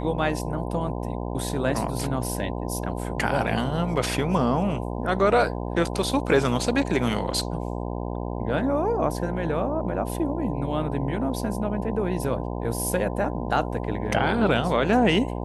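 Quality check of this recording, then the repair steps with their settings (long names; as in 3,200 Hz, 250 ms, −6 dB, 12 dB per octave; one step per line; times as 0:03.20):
mains buzz 60 Hz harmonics 17 −30 dBFS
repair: hum removal 60 Hz, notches 17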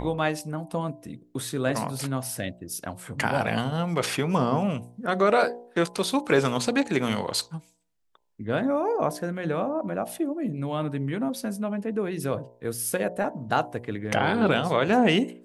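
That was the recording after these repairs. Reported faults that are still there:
none of them is left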